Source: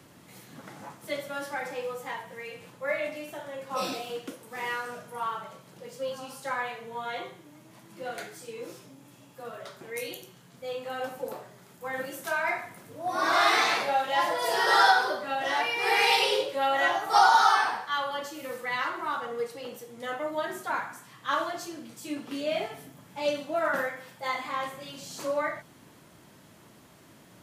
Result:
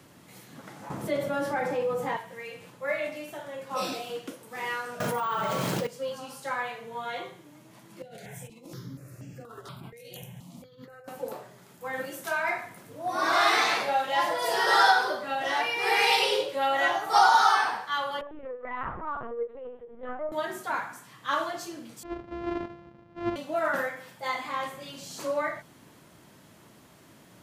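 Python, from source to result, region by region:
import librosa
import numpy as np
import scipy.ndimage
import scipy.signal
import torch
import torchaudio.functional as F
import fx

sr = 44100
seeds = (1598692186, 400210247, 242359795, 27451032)

y = fx.chain(x, sr, fx.tilt_shelf(db=6.5, hz=1200.0),
    fx.env_flatten(amount_pct=50), at=(0.9, 2.17))
y = fx.chain(y, sr, fx.resample_bad(factor=2, down='filtered', up='hold'),
    fx.env_flatten(amount_pct=100), at=(5.0, 5.87))
y = fx.chain(y, sr, fx.peak_eq(hz=100.0, db=14.0, octaves=2.3),
    fx.over_compress(threshold_db=-42.0, ratio=-1.0),
    fx.phaser_held(hz=4.2, low_hz=300.0, high_hz=3700.0), at=(8.02, 11.08))
y = fx.chain(y, sr, fx.lowpass(hz=1200.0, slope=12),
    fx.lpc_vocoder(seeds[0], excitation='pitch_kept', order=10), at=(18.21, 20.32))
y = fx.chain(y, sr, fx.sample_sort(block=128),
    fx.spacing_loss(db_at_10k=42), at=(22.03, 23.36))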